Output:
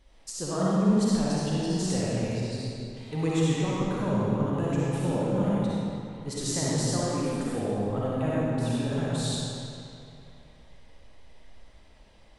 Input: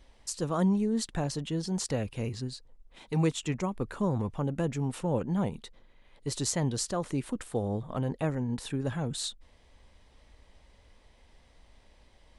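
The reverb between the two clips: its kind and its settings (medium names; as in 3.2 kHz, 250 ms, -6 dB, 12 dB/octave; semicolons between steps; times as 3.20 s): algorithmic reverb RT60 2.7 s, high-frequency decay 0.8×, pre-delay 20 ms, DRR -7.5 dB; trim -4 dB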